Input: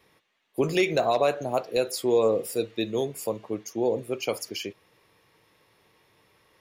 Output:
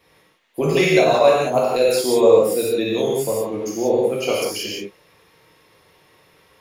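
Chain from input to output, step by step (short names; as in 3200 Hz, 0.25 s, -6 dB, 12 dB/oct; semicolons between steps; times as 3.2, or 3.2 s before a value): non-linear reverb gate 0.21 s flat, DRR -5.5 dB; gain +2 dB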